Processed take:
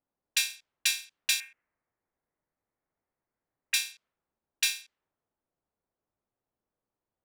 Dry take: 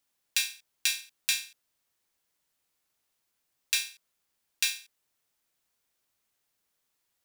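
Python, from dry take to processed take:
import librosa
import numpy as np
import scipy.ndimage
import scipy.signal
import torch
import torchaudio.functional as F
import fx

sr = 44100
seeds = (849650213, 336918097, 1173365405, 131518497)

y = fx.high_shelf_res(x, sr, hz=3000.0, db=-12.5, q=3.0, at=(1.4, 3.74))
y = fx.env_lowpass(y, sr, base_hz=790.0, full_db=-29.5)
y = y * 10.0 ** (1.5 / 20.0)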